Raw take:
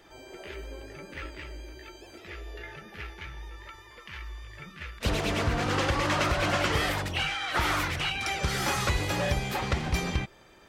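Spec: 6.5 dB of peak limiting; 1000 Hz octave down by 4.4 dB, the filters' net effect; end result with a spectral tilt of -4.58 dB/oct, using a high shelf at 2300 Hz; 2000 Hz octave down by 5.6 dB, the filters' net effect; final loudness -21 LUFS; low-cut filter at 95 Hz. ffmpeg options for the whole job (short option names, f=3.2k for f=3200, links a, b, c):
-af "highpass=95,equalizer=f=1k:t=o:g=-4,equalizer=f=2k:t=o:g=-3.5,highshelf=f=2.3k:g=-4.5,volume=13.5dB,alimiter=limit=-10.5dB:level=0:latency=1"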